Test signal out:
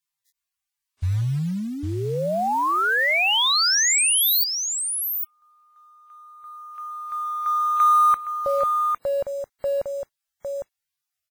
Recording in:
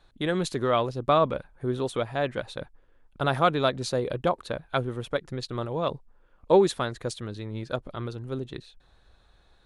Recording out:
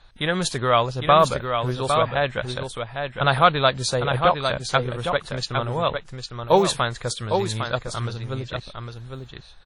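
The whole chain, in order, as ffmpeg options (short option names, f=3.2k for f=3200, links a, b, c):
-filter_complex "[0:a]equalizer=f=310:w=0.96:g=-11.5,asplit=2[a][b];[b]aecho=0:1:806:0.501[c];[a][c]amix=inputs=2:normalize=0,acrusher=bits=6:mode=log:mix=0:aa=0.000001,volume=8.5dB" -ar 48000 -c:a wmav2 -b:a 32k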